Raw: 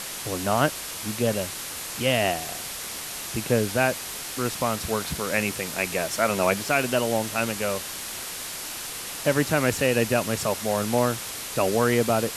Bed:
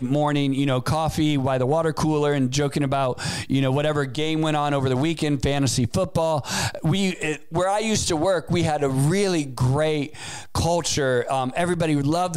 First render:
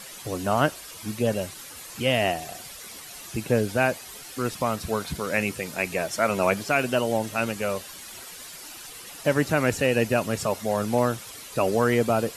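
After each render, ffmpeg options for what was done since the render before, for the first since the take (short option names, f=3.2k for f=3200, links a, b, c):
-af "afftdn=nr=11:nf=-35"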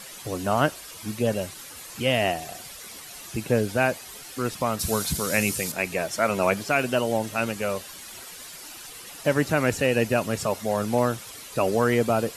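-filter_complex "[0:a]asettb=1/sr,asplit=3[a][b][c];[a]atrim=end=4.794[d];[b]atrim=start=4.79:end=5.72,asetpts=PTS-STARTPTS,afade=t=in:d=0.004:c=qsin,afade=t=out:st=0.926:d=0.004:c=qsin,bass=f=250:g=4,treble=f=4k:g=12[e];[c]atrim=start=5.716[f];[d][e]acrossfade=d=0.004:c1=hsin:c2=qsin[g];[g][f]acrossfade=d=0.004:c1=qsin:c2=hsin"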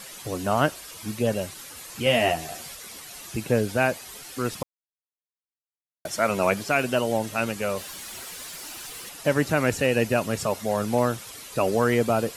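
-filter_complex "[0:a]asettb=1/sr,asplit=3[a][b][c];[a]atrim=end=2.054[d];[b]atrim=start=2.05:end=2.75,asetpts=PTS-STARTPTS,afade=t=in:d=0.004:c=qsin,afade=t=out:st=0.696:d=0.004:c=qsin,asplit=2[e][f];[f]adelay=13,volume=-3.5dB[g];[e][g]amix=inputs=2:normalize=0,atrim=end_sample=30870[h];[c]atrim=start=2.746[i];[d][h]acrossfade=d=0.004:c1=hsin:c2=qsin[j];[j][i]acrossfade=d=0.004:c1=qsin:c2=hsin,asettb=1/sr,asplit=3[k][l][m];[k]atrim=end=7.774[n];[l]atrim=start=7.77:end=9.09,asetpts=PTS-STARTPTS,afade=t=in:d=0.004:c=qsin,afade=t=out:st=1.316:d=0.004:c=qsin,aeval=exprs='val(0)+0.5*0.0075*sgn(val(0))':c=same[o];[m]atrim=start=9.086[p];[n][o]acrossfade=d=0.004:c1=hsin:c2=qsin[q];[q][p]acrossfade=d=0.004:c1=qsin:c2=hsin,asplit=3[r][s][t];[r]atrim=end=4.63,asetpts=PTS-STARTPTS,afade=t=out:st=4.626:d=0.004:c=hsin[u];[s]atrim=start=4.63:end=6.05,asetpts=PTS-STARTPTS,volume=0[v];[t]atrim=start=6.05,asetpts=PTS-STARTPTS,afade=t=in:d=0.004:c=hsin[w];[u][v][w]concat=n=3:v=0:a=1"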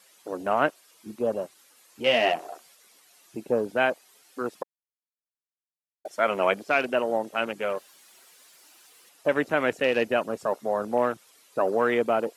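-af "highpass=310,afwtdn=0.0224"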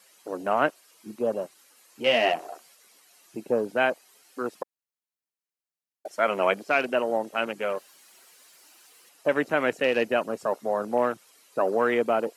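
-af "highpass=120,bandreject=f=3.5k:w=20"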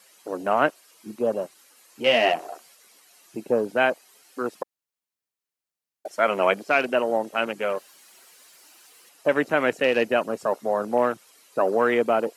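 -af "volume=2.5dB"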